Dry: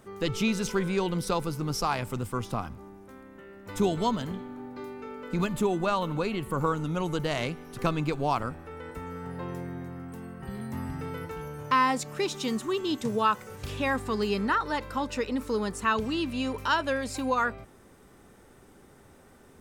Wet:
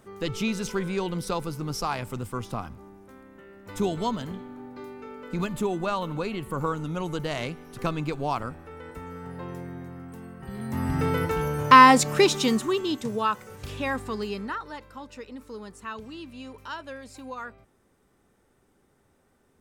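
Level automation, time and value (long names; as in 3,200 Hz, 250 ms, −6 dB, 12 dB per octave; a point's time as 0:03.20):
0:10.47 −1 dB
0:11.02 +11 dB
0:12.17 +11 dB
0:13.08 −1 dB
0:14.02 −1 dB
0:14.90 −11 dB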